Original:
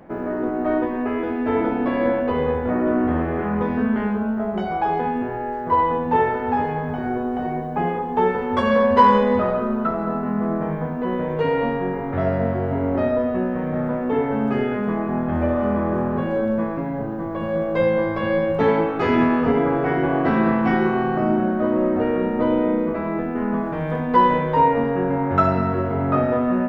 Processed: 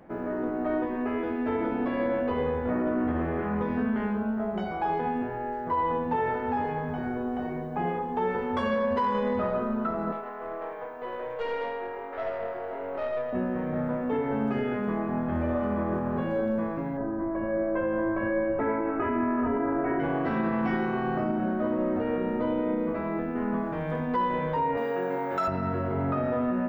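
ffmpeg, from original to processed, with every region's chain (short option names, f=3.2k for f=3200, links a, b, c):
-filter_complex "[0:a]asettb=1/sr,asplit=3[a][b][c];[a]atrim=end=10.124[d];[b]atrim=start=10.12:end=13.33,asetpts=PTS-STARTPTS,afade=t=in:d=0.004:c=qsin,afade=t=out:st=3.206:d=0.004:c=qsin,highpass=f=420:w=0.5412,highpass=f=420:w=1.3066,aeval=exprs='(tanh(8.91*val(0)+0.35)-tanh(0.35))/8.91':c=same[e];[c]atrim=start=13.326[f];[d][e]acrossfade=d=0.004:c1=hsin:c2=qsin[g];[g][f]acrossfade=d=0.004:c1=qsin:c2=hsin,asettb=1/sr,asplit=3[h][i][j];[h]atrim=end=16.974[k];[i]atrim=start=16.97:end=20,asetpts=PTS-STARTPTS,afade=t=in:d=0.004:c=qsin,afade=t=out:st=3.026:d=0.004:c=qsin,lowpass=f=2k:w=0.5412,lowpass=f=2k:w=1.3066,aecho=1:1:3.1:0.72,atrim=end_sample=133623[l];[j]atrim=start=19.996[m];[k][l]acrossfade=d=0.004:c1=hsin:c2=qsin[n];[n][m]acrossfade=d=0.004:c1=qsin:c2=hsin,asettb=1/sr,asplit=3[o][p][q];[o]atrim=end=24.774[r];[p]atrim=start=24.77:end=25.48,asetpts=PTS-STARTPTS,afade=t=in:d=0.004:c=qsin,afade=t=out:st=0.706:d=0.004:c=qsin,highpass=160,bass=f=250:g=-11,treble=f=4k:g=14,asplit=2[s][t];[t]adelay=49,volume=-10.5dB[u];[s][u]amix=inputs=2:normalize=0,atrim=end_sample=31311[v];[q]atrim=start=25.476[w];[r][v]acrossfade=d=0.004:c1=hsin:c2=qsin[x];[x][w]acrossfade=d=0.004:c1=qsin:c2=hsin,bandreject=f=53.1:t=h:w=4,bandreject=f=106.2:t=h:w=4,bandreject=f=159.3:t=h:w=4,bandreject=f=212.4:t=h:w=4,bandreject=f=265.5:t=h:w=4,bandreject=f=318.6:t=h:w=4,bandreject=f=371.7:t=h:w=4,bandreject=f=424.8:t=h:w=4,bandreject=f=477.9:t=h:w=4,bandreject=f=531:t=h:w=4,bandreject=f=584.1:t=h:w=4,bandreject=f=637.2:t=h:w=4,bandreject=f=690.3:t=h:w=4,bandreject=f=743.4:t=h:w=4,bandreject=f=796.5:t=h:w=4,bandreject=f=849.6:t=h:w=4,bandreject=f=902.7:t=h:w=4,bandreject=f=955.8:t=h:w=4,bandreject=f=1.0089k:t=h:w=4,bandreject=f=1.062k:t=h:w=4,bandreject=f=1.1151k:t=h:w=4,alimiter=limit=-13.5dB:level=0:latency=1:release=65,volume=-5.5dB"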